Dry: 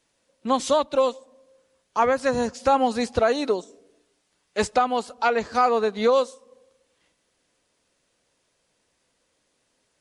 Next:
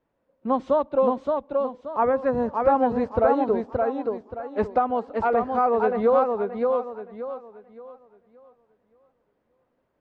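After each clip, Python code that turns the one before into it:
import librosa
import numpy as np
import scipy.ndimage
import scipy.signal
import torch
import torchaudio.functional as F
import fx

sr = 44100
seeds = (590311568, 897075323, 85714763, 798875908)

y = scipy.signal.sosfilt(scipy.signal.butter(2, 1100.0, 'lowpass', fs=sr, output='sos'), x)
y = fx.echo_warbled(y, sr, ms=574, feedback_pct=32, rate_hz=2.8, cents=99, wet_db=-3.5)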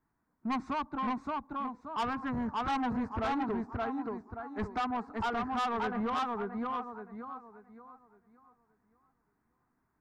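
y = fx.fixed_phaser(x, sr, hz=1300.0, stages=4)
y = 10.0 ** (-28.0 / 20.0) * np.tanh(y / 10.0 ** (-28.0 / 20.0))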